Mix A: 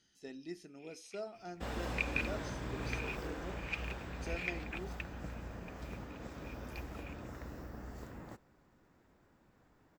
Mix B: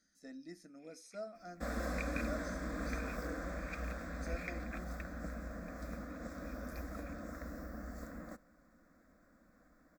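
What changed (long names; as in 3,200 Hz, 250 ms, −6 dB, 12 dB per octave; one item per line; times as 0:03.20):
second sound +4.0 dB
master: add phaser with its sweep stopped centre 590 Hz, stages 8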